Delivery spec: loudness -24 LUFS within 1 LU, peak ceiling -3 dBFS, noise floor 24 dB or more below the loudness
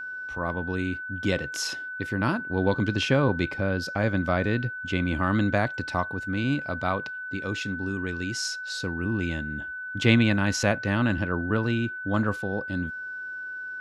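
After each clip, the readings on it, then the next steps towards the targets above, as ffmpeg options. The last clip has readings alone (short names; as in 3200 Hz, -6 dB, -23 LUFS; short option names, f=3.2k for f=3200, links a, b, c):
steady tone 1500 Hz; tone level -33 dBFS; loudness -27.0 LUFS; peak -4.5 dBFS; loudness target -24.0 LUFS
-> -af "bandreject=f=1.5k:w=30"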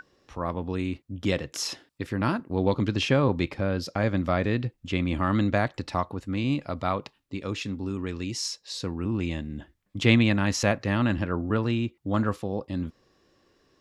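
steady tone none; loudness -27.5 LUFS; peak -5.0 dBFS; loudness target -24.0 LUFS
-> -af "volume=3.5dB,alimiter=limit=-3dB:level=0:latency=1"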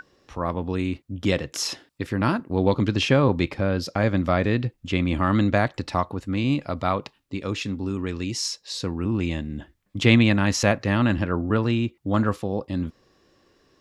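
loudness -24.0 LUFS; peak -3.0 dBFS; noise floor -65 dBFS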